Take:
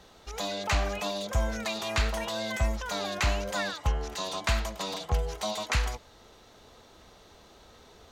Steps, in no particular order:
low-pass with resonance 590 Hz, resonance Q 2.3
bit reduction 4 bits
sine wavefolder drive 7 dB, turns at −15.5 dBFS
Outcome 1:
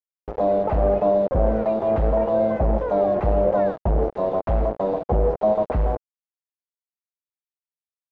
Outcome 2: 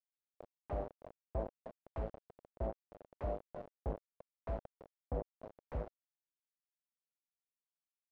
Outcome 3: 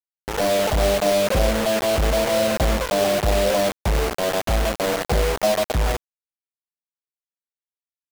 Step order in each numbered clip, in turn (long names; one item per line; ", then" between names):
sine wavefolder, then bit reduction, then low-pass with resonance
bit reduction, then sine wavefolder, then low-pass with resonance
sine wavefolder, then low-pass with resonance, then bit reduction